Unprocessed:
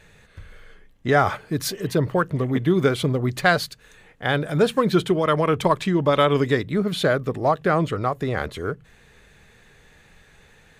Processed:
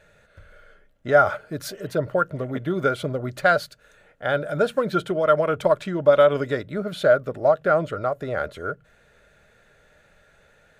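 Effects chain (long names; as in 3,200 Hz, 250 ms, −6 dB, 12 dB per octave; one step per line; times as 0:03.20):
hollow resonant body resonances 600/1,400 Hz, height 15 dB, ringing for 30 ms
level −7.5 dB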